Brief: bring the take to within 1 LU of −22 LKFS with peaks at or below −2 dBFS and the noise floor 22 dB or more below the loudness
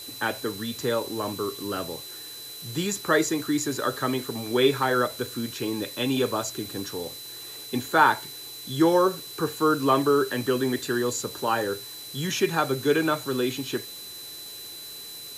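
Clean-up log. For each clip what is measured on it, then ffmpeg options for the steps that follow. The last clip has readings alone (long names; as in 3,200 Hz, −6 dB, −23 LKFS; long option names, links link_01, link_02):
interfering tone 4,000 Hz; level of the tone −40 dBFS; background noise floor −40 dBFS; target noise floor −48 dBFS; integrated loudness −26.0 LKFS; sample peak −4.5 dBFS; target loudness −22.0 LKFS
→ -af "bandreject=frequency=4000:width=30"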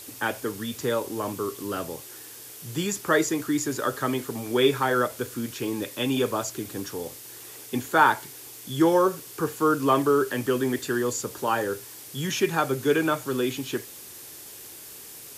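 interfering tone none found; background noise floor −43 dBFS; target noise floor −48 dBFS
→ -af "afftdn=noise_reduction=6:noise_floor=-43"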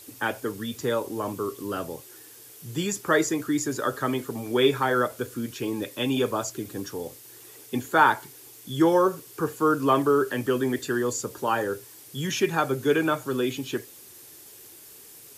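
background noise floor −48 dBFS; integrated loudness −26.0 LKFS; sample peak −4.5 dBFS; target loudness −22.0 LKFS
→ -af "volume=4dB,alimiter=limit=-2dB:level=0:latency=1"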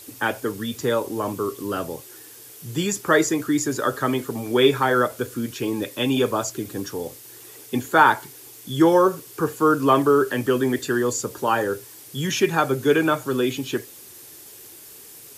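integrated loudness −22.0 LKFS; sample peak −2.0 dBFS; background noise floor −44 dBFS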